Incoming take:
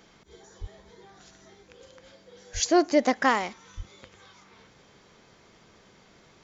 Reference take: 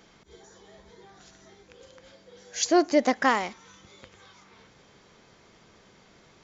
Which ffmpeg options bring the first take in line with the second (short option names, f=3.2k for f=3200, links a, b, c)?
-filter_complex "[0:a]asplit=3[a][b][c];[a]afade=t=out:st=0.6:d=0.02[d];[b]highpass=f=140:w=0.5412,highpass=f=140:w=1.3066,afade=t=in:st=0.6:d=0.02,afade=t=out:st=0.72:d=0.02[e];[c]afade=t=in:st=0.72:d=0.02[f];[d][e][f]amix=inputs=3:normalize=0,asplit=3[g][h][i];[g]afade=t=out:st=2.53:d=0.02[j];[h]highpass=f=140:w=0.5412,highpass=f=140:w=1.3066,afade=t=in:st=2.53:d=0.02,afade=t=out:st=2.65:d=0.02[k];[i]afade=t=in:st=2.65:d=0.02[l];[j][k][l]amix=inputs=3:normalize=0,asplit=3[m][n][o];[m]afade=t=out:st=3.76:d=0.02[p];[n]highpass=f=140:w=0.5412,highpass=f=140:w=1.3066,afade=t=in:st=3.76:d=0.02,afade=t=out:st=3.88:d=0.02[q];[o]afade=t=in:st=3.88:d=0.02[r];[p][q][r]amix=inputs=3:normalize=0"